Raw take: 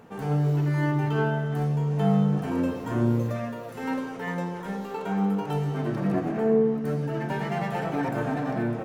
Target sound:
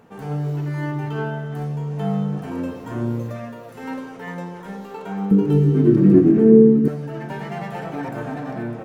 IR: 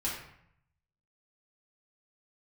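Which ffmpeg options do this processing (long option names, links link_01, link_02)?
-filter_complex "[0:a]asettb=1/sr,asplit=3[link_01][link_02][link_03];[link_01]atrim=end=5.314[link_04];[link_02]atrim=start=5.31:end=6.88,asetpts=PTS-STARTPTS,afade=type=in:duration=0.004:curve=qsin,afade=type=out:start_time=1.566:duration=0.004:curve=qsin,lowshelf=frequency=490:width_type=q:width=3:gain=11.5[link_05];[link_03]atrim=start=6.876[link_06];[link_04][link_05]acrossfade=duration=0.004:curve1=hsin:curve2=qsin[link_07];[link_07][link_06]acrossfade=duration=0.004:curve1=qsin:curve2=hsin,volume=-1dB"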